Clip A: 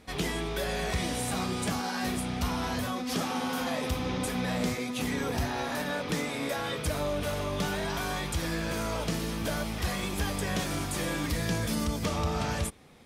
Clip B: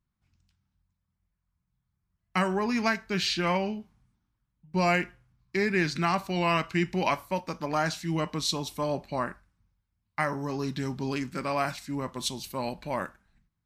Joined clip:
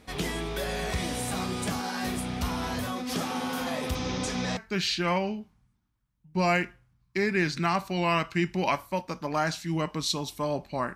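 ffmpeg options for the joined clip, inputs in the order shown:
ffmpeg -i cue0.wav -i cue1.wav -filter_complex "[0:a]asettb=1/sr,asplit=3[link_01][link_02][link_03];[link_01]atrim=end=3.954[link_04];[link_02]atrim=start=3.95:end=4.57,asetpts=PTS-STARTPTS,afade=type=in:duration=0.004:curve=qsin,afade=type=out:start_time=0.616:duration=0.004:curve=qsin,lowpass=frequency=6100:width_type=q:width=2.7[link_05];[link_03]atrim=start=4.566[link_06];[link_04][link_05]acrossfade=duration=0.004:curve1=hsin:curve2=qsin[link_07];[link_07][link_06]acrossfade=duration=0.004:curve1=qsin:curve2=hsin,apad=whole_dur=10.95,atrim=end=10.95,atrim=end=4.572[link_08];[1:a]atrim=start=2.958:end=9.34[link_09];[link_08][link_09]acrossfade=duration=0.004:curve1=hsin:curve2=hsin" out.wav

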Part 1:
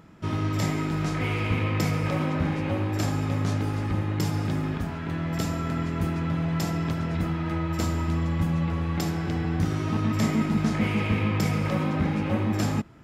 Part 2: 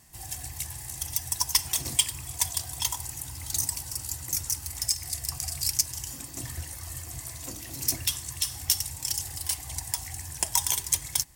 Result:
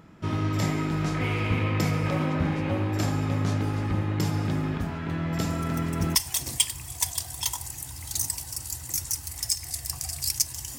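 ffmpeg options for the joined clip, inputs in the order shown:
ffmpeg -i cue0.wav -i cue1.wav -filter_complex "[1:a]asplit=2[link_01][link_02];[0:a]apad=whole_dur=10.78,atrim=end=10.78,atrim=end=6.152[link_03];[link_02]atrim=start=1.538:end=6.17[link_04];[link_01]atrim=start=0.88:end=1.54,asetpts=PTS-STARTPTS,volume=-16dB,afade=type=in:duration=0.004:curve=hsin,afade=type=out:start_time=0.656:duration=0.004:curve=hsin,adelay=242109S[link_05];[link_03][link_04]acrossfade=duration=0.004:curve1=hsin:curve2=hsin[link_06];[link_06][link_05]amix=inputs=2:normalize=0" out.wav

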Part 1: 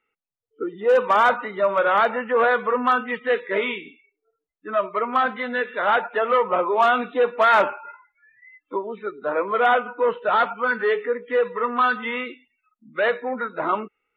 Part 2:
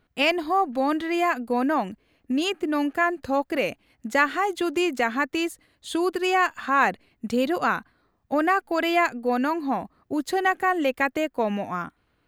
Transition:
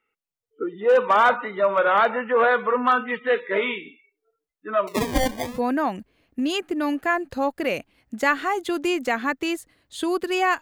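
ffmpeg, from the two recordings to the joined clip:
ffmpeg -i cue0.wav -i cue1.wav -filter_complex "[0:a]asettb=1/sr,asplit=3[link_01][link_02][link_03];[link_01]atrim=end=4.874[link_04];[link_02]atrim=start=4.87:end=5.6,asetpts=PTS-STARTPTS,afade=type=in:duration=0.004:curve=qsin,afade=type=out:start_time=0.726:duration=0.004:curve=qsin,acrusher=samples=26:mix=1:aa=0.000001:lfo=1:lforange=15.6:lforate=0.65[link_05];[link_03]atrim=start=5.596[link_06];[link_04][link_05]acrossfade=duration=0.004:curve1=hsin:curve2=qsin[link_07];[link_07][link_06]acrossfade=duration=0.004:curve1=qsin:curve2=hsin,apad=whole_dur=10.61,atrim=end=10.61,atrim=end=5.6,asetpts=PTS-STARTPTS[link_08];[1:a]atrim=start=1.34:end=6.53,asetpts=PTS-STARTPTS[link_09];[link_08][link_09]acrossfade=duration=0.18:curve1=tri:curve2=tri" out.wav

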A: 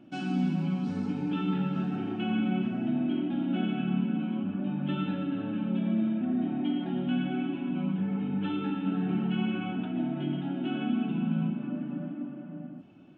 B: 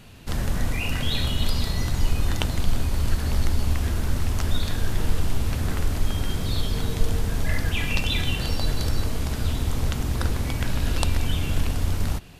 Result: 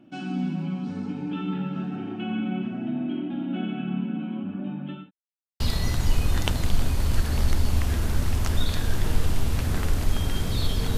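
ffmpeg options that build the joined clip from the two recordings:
ffmpeg -i cue0.wav -i cue1.wav -filter_complex "[0:a]apad=whole_dur=10.97,atrim=end=10.97,asplit=2[link_01][link_02];[link_01]atrim=end=5.11,asetpts=PTS-STARTPTS,afade=type=out:start_time=4.59:duration=0.52:curve=qsin[link_03];[link_02]atrim=start=5.11:end=5.6,asetpts=PTS-STARTPTS,volume=0[link_04];[1:a]atrim=start=1.54:end=6.91,asetpts=PTS-STARTPTS,afade=type=in:duration=0.004:curve=hsin[link_05];[link_03][link_04][link_05]concat=n=3:v=0:a=1" out.wav

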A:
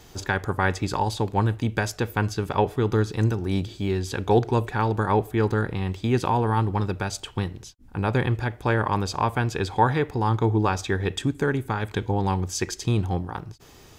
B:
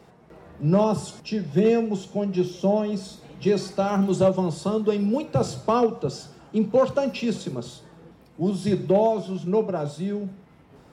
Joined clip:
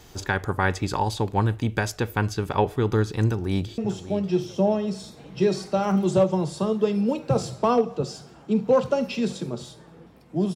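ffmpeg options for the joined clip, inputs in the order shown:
ffmpeg -i cue0.wav -i cue1.wav -filter_complex "[0:a]apad=whole_dur=10.55,atrim=end=10.55,atrim=end=3.782[link_01];[1:a]atrim=start=1.828:end=8.6[link_02];[link_01][link_02]acrossfade=duration=0.004:curve1=hsin:curve2=hsin,asplit=2[link_03][link_04];[link_04]afade=type=in:start_time=3.25:duration=0.01,afade=type=out:start_time=3.78:duration=0.01,aecho=0:1:590|1180|1770:0.223872|0.0671616|0.0201485[link_05];[link_03][link_05]amix=inputs=2:normalize=0" out.wav

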